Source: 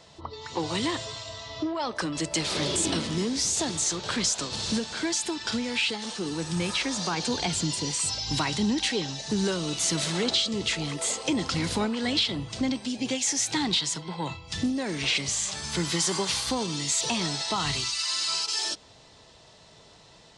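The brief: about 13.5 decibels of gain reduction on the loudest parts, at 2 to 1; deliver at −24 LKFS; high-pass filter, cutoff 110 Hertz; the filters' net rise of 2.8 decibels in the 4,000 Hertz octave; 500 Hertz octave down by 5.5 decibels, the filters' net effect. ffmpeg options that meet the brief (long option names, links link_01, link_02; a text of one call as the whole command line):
ffmpeg -i in.wav -af "highpass=110,equalizer=frequency=500:width_type=o:gain=-7.5,equalizer=frequency=4000:width_type=o:gain=3.5,acompressor=threshold=-44dB:ratio=2,volume=12.5dB" out.wav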